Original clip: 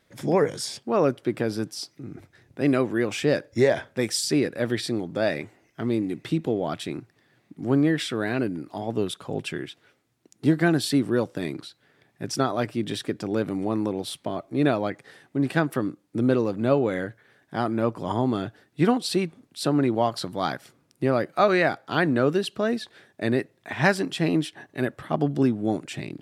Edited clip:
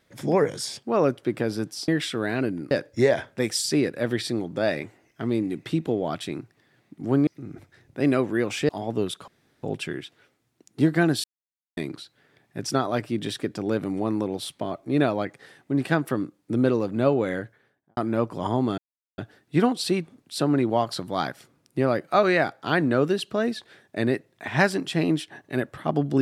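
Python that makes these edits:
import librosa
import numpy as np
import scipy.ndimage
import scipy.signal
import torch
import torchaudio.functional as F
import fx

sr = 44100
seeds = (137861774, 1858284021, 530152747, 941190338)

y = fx.studio_fade_out(x, sr, start_s=17.05, length_s=0.57)
y = fx.edit(y, sr, fx.swap(start_s=1.88, length_s=1.42, other_s=7.86, other_length_s=0.83),
    fx.insert_room_tone(at_s=9.28, length_s=0.35),
    fx.silence(start_s=10.89, length_s=0.53),
    fx.insert_silence(at_s=18.43, length_s=0.4), tone=tone)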